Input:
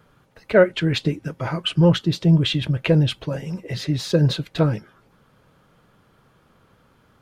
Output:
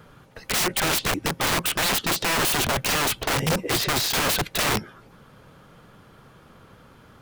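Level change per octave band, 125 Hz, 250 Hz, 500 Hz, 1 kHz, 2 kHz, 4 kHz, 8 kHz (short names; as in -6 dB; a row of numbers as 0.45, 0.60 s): -12.5, -9.5, -7.5, +7.5, +5.0, +3.0, +16.5 dB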